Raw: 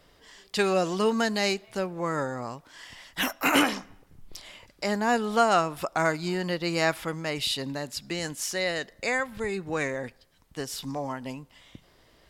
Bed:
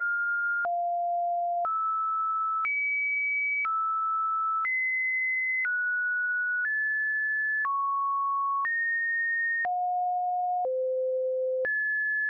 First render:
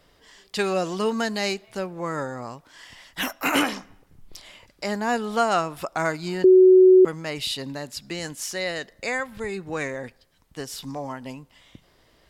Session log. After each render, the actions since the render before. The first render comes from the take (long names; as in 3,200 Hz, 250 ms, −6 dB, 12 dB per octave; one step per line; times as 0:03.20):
0:06.44–0:07.05: beep over 372 Hz −9 dBFS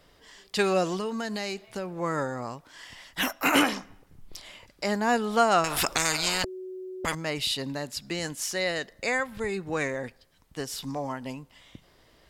0:00.96–0:02.01: downward compressor 4 to 1, threshold −29 dBFS
0:05.64–0:07.15: every bin compressed towards the loudest bin 10 to 1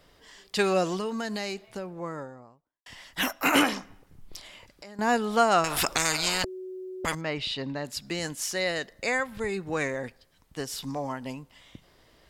0:01.36–0:02.86: fade out and dull
0:04.46–0:04.99: downward compressor, threshold −43 dBFS
0:07.21–0:07.85: low-pass filter 3,600 Hz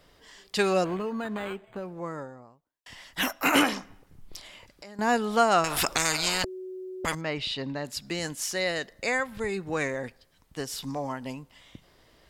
0:00.84–0:01.83: linearly interpolated sample-rate reduction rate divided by 8×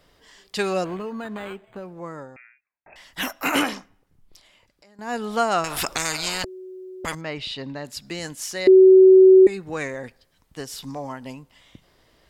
0:02.36–0:02.96: voice inversion scrambler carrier 2,600 Hz
0:03.71–0:05.24: duck −9 dB, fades 0.19 s
0:08.67–0:09.47: beep over 377 Hz −7 dBFS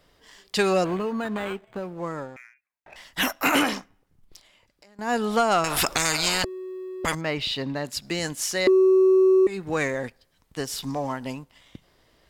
downward compressor 6 to 1, threshold −19 dBFS, peak gain reduction 9.5 dB
leveller curve on the samples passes 1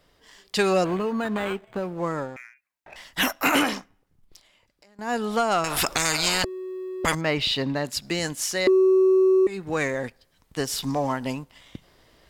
speech leveller within 4 dB 2 s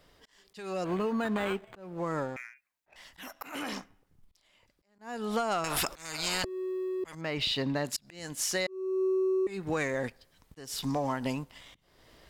downward compressor 6 to 1, threshold −27 dBFS, peak gain reduction 11 dB
volume swells 371 ms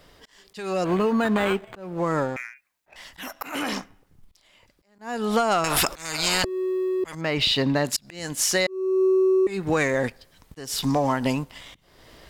level +8.5 dB